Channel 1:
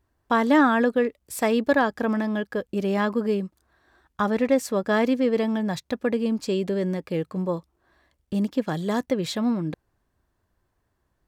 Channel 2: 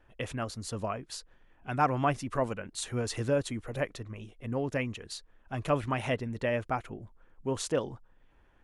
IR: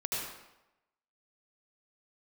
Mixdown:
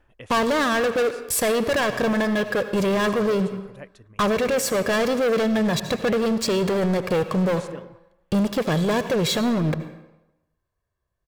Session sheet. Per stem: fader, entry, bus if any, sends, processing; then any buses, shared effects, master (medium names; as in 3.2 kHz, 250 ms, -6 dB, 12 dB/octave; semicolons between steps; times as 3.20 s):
-1.0 dB, 0.00 s, send -15 dB, comb 1.8 ms, depth 55%; waveshaping leveller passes 5; peak limiter -15.5 dBFS, peak gain reduction 8.5 dB
+2.5 dB, 0.00 s, no send, auto duck -12 dB, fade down 0.30 s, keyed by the first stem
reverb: on, RT60 0.95 s, pre-delay 70 ms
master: peak limiter -16.5 dBFS, peak gain reduction 5.5 dB